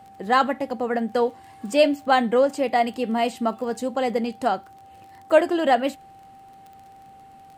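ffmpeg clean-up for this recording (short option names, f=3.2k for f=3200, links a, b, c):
-af "adeclick=t=4,bandreject=f=780:w=30"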